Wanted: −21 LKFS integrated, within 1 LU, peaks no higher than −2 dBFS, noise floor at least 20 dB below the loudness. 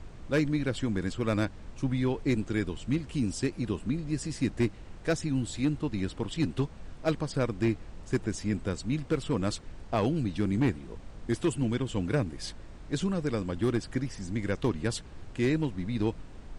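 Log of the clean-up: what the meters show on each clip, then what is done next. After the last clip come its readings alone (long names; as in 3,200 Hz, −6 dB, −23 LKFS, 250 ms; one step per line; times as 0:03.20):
share of clipped samples 0.4%; peaks flattened at −19.0 dBFS; background noise floor −46 dBFS; target noise floor −51 dBFS; integrated loudness −31.0 LKFS; sample peak −19.0 dBFS; target loudness −21.0 LKFS
→ clipped peaks rebuilt −19 dBFS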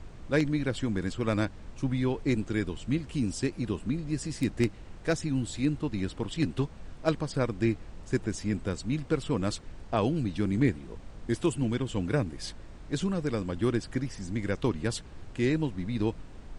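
share of clipped samples 0.0%; background noise floor −46 dBFS; target noise floor −51 dBFS
→ noise reduction from a noise print 6 dB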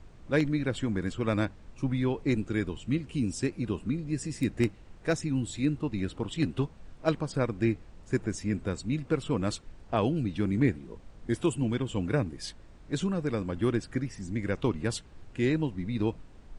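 background noise floor −52 dBFS; integrated loudness −31.0 LKFS; sample peak −11.0 dBFS; target loudness −21.0 LKFS
→ level +10 dB
brickwall limiter −2 dBFS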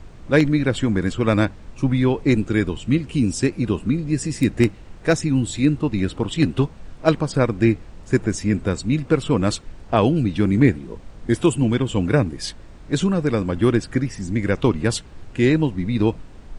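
integrated loudness −21.0 LKFS; sample peak −2.0 dBFS; background noise floor −42 dBFS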